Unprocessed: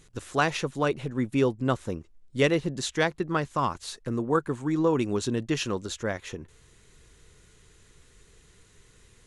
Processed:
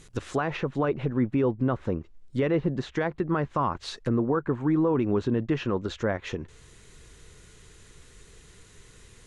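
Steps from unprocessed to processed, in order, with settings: limiter -20.5 dBFS, peak gain reduction 10.5 dB; treble ducked by the level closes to 1700 Hz, closed at -28.5 dBFS; gain +5 dB

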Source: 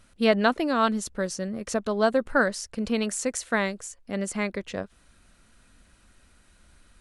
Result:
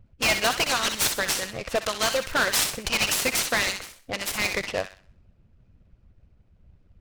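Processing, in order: low-pass opened by the level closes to 310 Hz, open at -22 dBFS; EQ curve 130 Hz 0 dB, 270 Hz -16 dB, 1600 Hz -3 dB, 2500 Hz +11 dB; harmonic-percussive split harmonic -17 dB; bell 580 Hz +8.5 dB 2 oct; in parallel at -2 dB: compressor, threshold -43 dBFS, peak gain reduction 25 dB; on the sum: hard clip -26 dBFS, distortion -4 dB; on a send: thin delay 63 ms, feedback 35%, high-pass 1500 Hz, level -6 dB; on the sum: noise-modulated delay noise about 2100 Hz, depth 0.039 ms; gain +7.5 dB

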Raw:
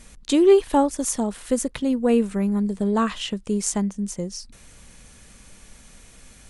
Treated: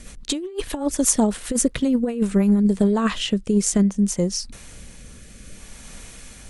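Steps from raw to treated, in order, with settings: negative-ratio compressor -22 dBFS, ratio -0.5; rotary speaker horn 8 Hz, later 0.6 Hz, at 1.95; gain +5.5 dB

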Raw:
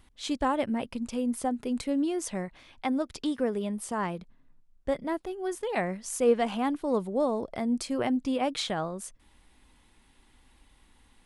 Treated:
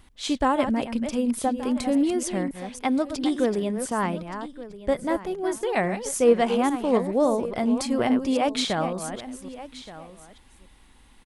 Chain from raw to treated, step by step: reverse delay 0.279 s, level -9 dB; on a send: echo 1.174 s -16 dB; on the sum: gain +5 dB

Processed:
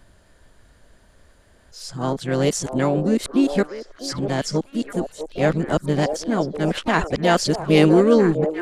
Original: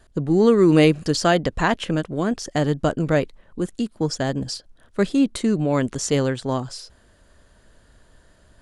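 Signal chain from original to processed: whole clip reversed; delay with a stepping band-pass 0.65 s, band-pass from 550 Hz, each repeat 1.4 oct, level -5 dB; harmoniser +3 st -15 dB, +5 st -12 dB

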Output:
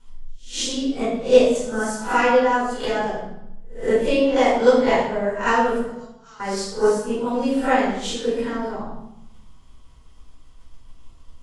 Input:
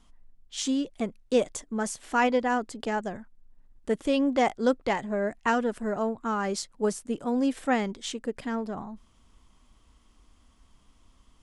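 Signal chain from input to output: spectral swells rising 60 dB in 0.39 s; transient shaper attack +7 dB, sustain -3 dB; 5.82–6.4 band-pass 5100 Hz, Q 2.8; flutter echo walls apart 10.7 m, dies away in 0.3 s; reverb RT60 0.80 s, pre-delay 4 ms, DRR -7.5 dB; gain -6.5 dB

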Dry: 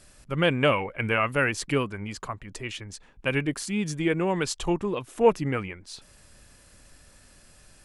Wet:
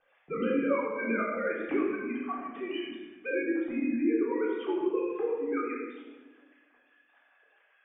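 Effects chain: sine-wave speech; LPF 2900 Hz 6 dB/oct; compressor 3:1, threshold -36 dBFS, peak gain reduction 19.5 dB; rotary speaker horn 5 Hz; reverb RT60 1.2 s, pre-delay 3 ms, DRR -7 dB

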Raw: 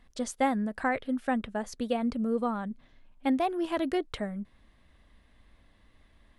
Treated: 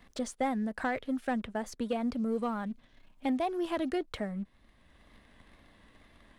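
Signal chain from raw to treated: sample leveller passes 1; vibrato 2 Hz 41 cents; in parallel at -11.5 dB: hard clip -37.5 dBFS, distortion -4 dB; on the sum: three-band squash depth 40%; gain -6.5 dB

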